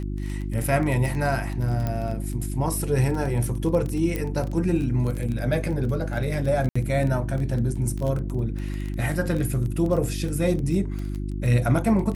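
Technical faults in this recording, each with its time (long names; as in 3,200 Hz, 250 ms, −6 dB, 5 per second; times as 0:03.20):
surface crackle 15 per second −27 dBFS
mains hum 50 Hz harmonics 7 −29 dBFS
0:01.87: click −15 dBFS
0:04.16: click −14 dBFS
0:06.69–0:06.75: drop-out 65 ms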